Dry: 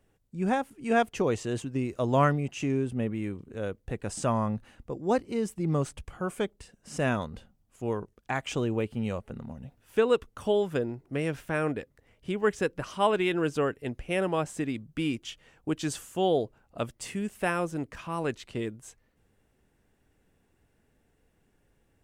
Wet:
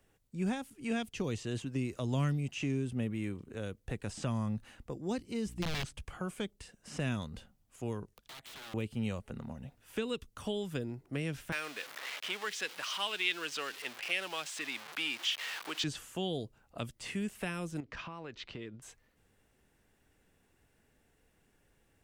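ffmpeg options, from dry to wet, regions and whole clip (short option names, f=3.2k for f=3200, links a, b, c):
-filter_complex "[0:a]asettb=1/sr,asplit=3[a][b][c];[a]atrim=end=5.464[d];[b]atrim=start=5.46:end=5.86,asetpts=PTS-STARTPTS,afade=t=in:d=0.004:c=qsin,afade=t=out:st=0.396:d=0.004:c=qsin,aeval=exprs='(mod(13.3*val(0)+1,2)-1)/13.3':c=same,aeval=exprs='val(0)+0.00631*(sin(2*PI*60*n/s)+sin(2*PI*2*60*n/s)/2+sin(2*PI*3*60*n/s)/3+sin(2*PI*4*60*n/s)/4+sin(2*PI*5*60*n/s)/5)':c=same[e];[c]atrim=start=5.856[f];[d][e]acrossfade=d=0.004:c1=hsin:c2=qsin[g];[g][f]acrossfade=d=0.004:c1=qsin:c2=hsin,asettb=1/sr,asplit=3[h][i][j];[h]atrim=end=8.164[k];[i]atrim=start=8.16:end=8.74,asetpts=PTS-STARTPTS,afade=t=in:d=0.004:c=qsin,afade=t=out:st=0.576:d=0.004:c=qsin,acompressor=threshold=-41dB:ratio=8:attack=3.2:release=140:knee=1:detection=peak,aeval=exprs='(mod(168*val(0)+1,2)-1)/168':c=same,equalizer=f=3.6k:t=o:w=0.56:g=5.5[l];[j]atrim=start=8.736[m];[k][l]acrossfade=d=0.004:c1=hsin:c2=qsin[n];[n][m]acrossfade=d=0.004:c1=qsin:c2=hsin,asettb=1/sr,asplit=3[o][p][q];[o]atrim=end=11.524[r];[p]atrim=start=11.52:end=15.84,asetpts=PTS-STARTPTS,afade=t=in:d=0.004:c=qsin,afade=t=out:st=4.316:d=0.004:c=qsin,aeval=exprs='val(0)+0.5*0.0141*sgn(val(0))':c=same,highpass=900,acontrast=86[s];[q]atrim=start=15.836[t];[r][s]acrossfade=d=0.004:c1=hsin:c2=qsin[u];[u][t]acrossfade=d=0.004:c1=qsin:c2=hsin,asettb=1/sr,asplit=3[v][w][x];[v]atrim=end=17.804[y];[w]atrim=start=17.8:end=18.82,asetpts=PTS-STARTPTS,afade=t=in:d=0.004:c=qsin,afade=t=out:st=1.016:d=0.004:c=qsin,lowpass=f=5.1k:w=0.5412,lowpass=f=5.1k:w=1.3066,acompressor=threshold=-37dB:ratio=12:attack=3.2:release=140:knee=1:detection=peak[z];[x]atrim=start=18.816[aa];[y][z]acrossfade=d=0.004:c1=hsin:c2=qsin[ab];[ab][aa]acrossfade=d=0.004:c1=qsin:c2=hsin,acrossover=split=4300[ac][ad];[ad]acompressor=threshold=-54dB:ratio=4:attack=1:release=60[ae];[ac][ae]amix=inputs=2:normalize=0,tiltshelf=f=970:g=-3,acrossover=split=270|3000[af][ag][ah];[ag]acompressor=threshold=-41dB:ratio=6[ai];[af][ai][ah]amix=inputs=3:normalize=0"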